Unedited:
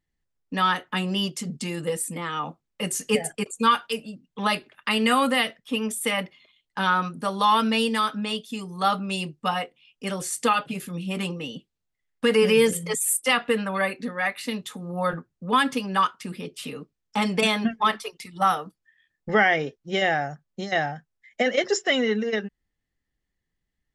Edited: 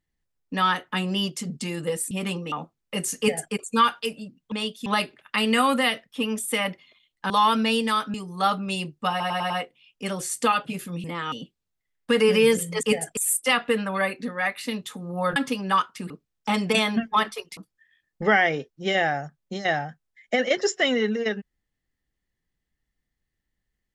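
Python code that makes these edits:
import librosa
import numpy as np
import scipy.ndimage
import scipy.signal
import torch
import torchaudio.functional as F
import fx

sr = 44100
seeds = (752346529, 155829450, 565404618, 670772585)

y = fx.edit(x, sr, fx.swap(start_s=2.11, length_s=0.28, other_s=11.05, other_length_s=0.41),
    fx.duplicate(start_s=3.06, length_s=0.34, to_s=12.97),
    fx.cut(start_s=6.83, length_s=0.54),
    fx.move(start_s=8.21, length_s=0.34, to_s=4.39),
    fx.stutter(start_s=9.51, slice_s=0.1, count=5),
    fx.cut(start_s=15.16, length_s=0.45),
    fx.cut(start_s=16.35, length_s=0.43),
    fx.cut(start_s=18.25, length_s=0.39), tone=tone)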